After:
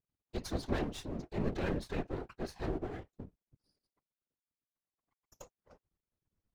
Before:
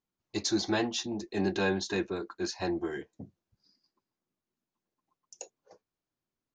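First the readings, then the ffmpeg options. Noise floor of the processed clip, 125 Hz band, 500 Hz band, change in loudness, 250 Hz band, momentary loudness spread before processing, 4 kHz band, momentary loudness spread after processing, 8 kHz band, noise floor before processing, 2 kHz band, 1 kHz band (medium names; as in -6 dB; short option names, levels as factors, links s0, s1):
under -85 dBFS, +0.5 dB, -6.5 dB, -7.0 dB, -7.0 dB, 19 LU, -13.5 dB, 20 LU, -15.0 dB, under -85 dBFS, -10.5 dB, -6.0 dB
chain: -filter_complex "[0:a]aemphasis=mode=reproduction:type=bsi,asplit=2[s0][s1];[s1]acompressor=threshold=0.01:ratio=6,volume=0.708[s2];[s0][s2]amix=inputs=2:normalize=0,aeval=exprs='max(val(0),0)':c=same,afftfilt=real='hypot(re,im)*cos(2*PI*random(0))':imag='hypot(re,im)*sin(2*PI*random(1))':win_size=512:overlap=0.75"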